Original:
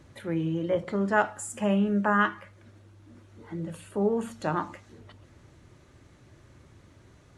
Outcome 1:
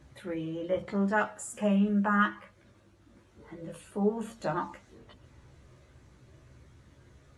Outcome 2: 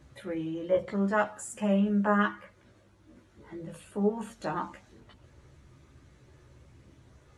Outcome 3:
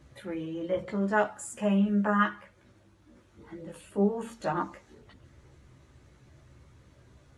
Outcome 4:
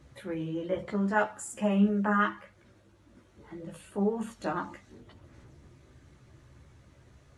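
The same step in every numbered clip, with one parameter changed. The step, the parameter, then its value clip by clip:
chorus, rate: 0.24 Hz, 0.49 Hz, 0.84 Hz, 2.1 Hz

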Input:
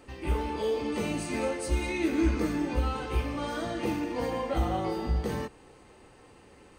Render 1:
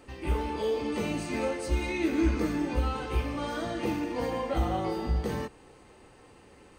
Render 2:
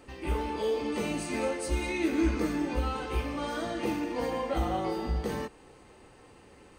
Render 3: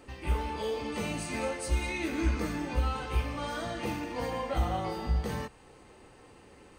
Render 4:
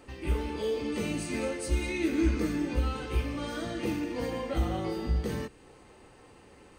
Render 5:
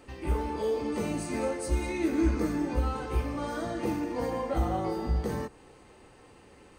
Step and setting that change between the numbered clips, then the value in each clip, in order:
dynamic bell, frequency: 9.9 kHz, 100 Hz, 340 Hz, 850 Hz, 3 kHz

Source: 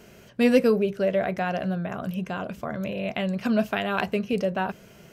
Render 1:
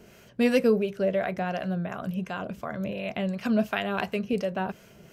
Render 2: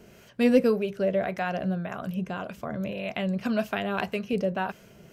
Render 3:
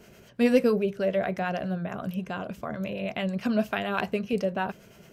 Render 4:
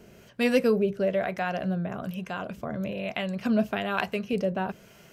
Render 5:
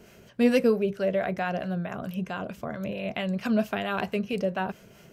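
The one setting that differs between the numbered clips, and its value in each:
harmonic tremolo, rate: 2.8 Hz, 1.8 Hz, 9.2 Hz, 1.1 Hz, 4.5 Hz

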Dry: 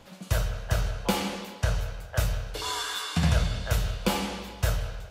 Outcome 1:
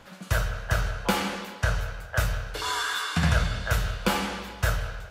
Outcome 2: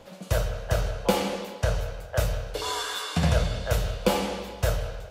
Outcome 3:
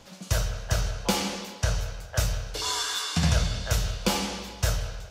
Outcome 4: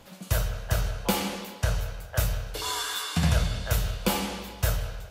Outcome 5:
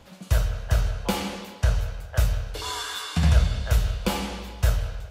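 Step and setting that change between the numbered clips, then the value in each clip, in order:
peaking EQ, frequency: 1.5 kHz, 530 Hz, 5.8 kHz, 15 kHz, 63 Hz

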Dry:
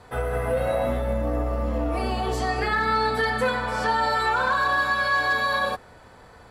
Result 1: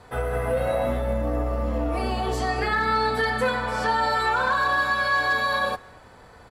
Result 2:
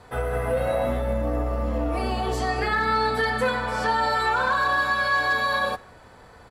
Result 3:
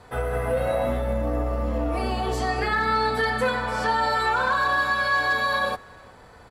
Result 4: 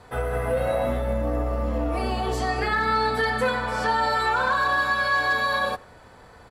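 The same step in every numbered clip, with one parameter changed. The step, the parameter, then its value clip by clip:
speakerphone echo, time: 230 ms, 150 ms, 360 ms, 90 ms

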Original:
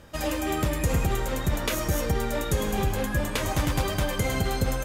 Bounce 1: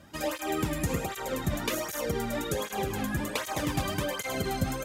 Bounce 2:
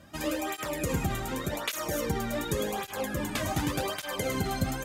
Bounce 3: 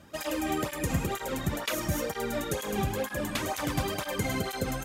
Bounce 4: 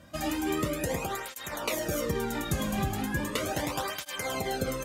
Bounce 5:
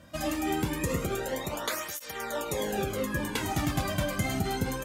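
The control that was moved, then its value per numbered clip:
cancelling through-zero flanger, nulls at: 1.3 Hz, 0.87 Hz, 2.1 Hz, 0.37 Hz, 0.25 Hz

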